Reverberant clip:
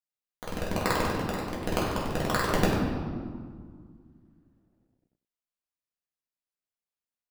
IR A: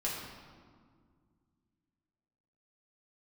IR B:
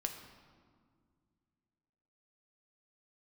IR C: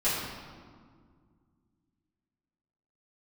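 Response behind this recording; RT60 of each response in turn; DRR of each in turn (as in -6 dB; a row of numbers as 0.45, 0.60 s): A; 1.9, 2.0, 1.9 s; -5.5, 4.0, -12.5 dB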